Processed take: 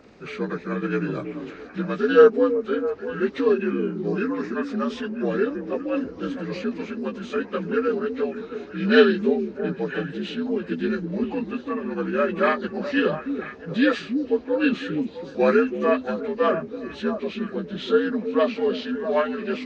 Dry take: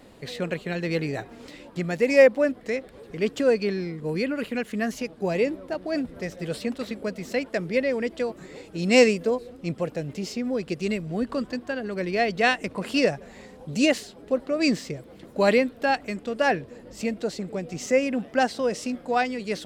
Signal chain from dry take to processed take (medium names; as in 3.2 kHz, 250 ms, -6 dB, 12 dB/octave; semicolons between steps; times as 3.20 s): frequency axis rescaled in octaves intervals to 81%; repeats whose band climbs or falls 328 ms, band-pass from 280 Hz, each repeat 1.4 oct, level -4.5 dB; trim +2.5 dB